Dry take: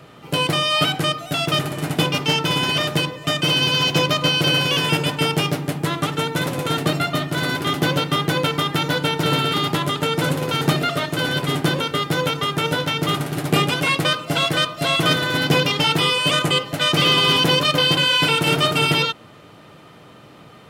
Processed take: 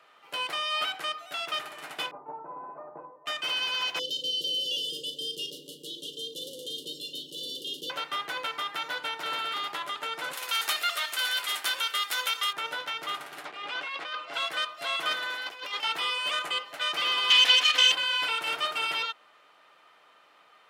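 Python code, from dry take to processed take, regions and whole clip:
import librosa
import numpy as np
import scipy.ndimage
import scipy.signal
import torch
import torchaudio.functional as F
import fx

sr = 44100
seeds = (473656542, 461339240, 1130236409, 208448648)

y = fx.chain(x, sr, fx.ellip_bandpass(low_hz=130.0, high_hz=940.0, order=3, stop_db=50),
    fx.resample_bad(factor=8, down='none', up='filtered'), at=(2.11, 3.26))
y = fx.chain(y, sr, fx.brickwall_bandstop(low_hz=570.0, high_hz=2800.0),
    fx.doubler(ms=39.0, db=-11.5),
    fx.env_flatten(amount_pct=50), at=(3.99, 7.9))
y = fx.chain(y, sr, fx.tilt_eq(slope=4.5),
    fx.echo_single(ms=531, db=-17.5), at=(10.33, 12.53))
y = fx.chain(y, sr, fx.bandpass_edges(low_hz=170.0, high_hz=4700.0),
    fx.over_compress(threshold_db=-24.0, ratio=-1.0), at=(13.45, 14.34))
y = fx.chain(y, sr, fx.bass_treble(bass_db=-11, treble_db=0),
    fx.over_compress(threshold_db=-24.0, ratio=-0.5), at=(15.34, 15.83))
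y = fx.chain(y, sr, fx.lower_of_two(delay_ms=4.0),
    fx.weighting(curve='D'), at=(17.3, 17.92))
y = scipy.signal.sosfilt(scipy.signal.butter(2, 990.0, 'highpass', fs=sr, output='sos'), y)
y = fx.high_shelf(y, sr, hz=3900.0, db=-10.0)
y = y * 10.0 ** (-6.5 / 20.0)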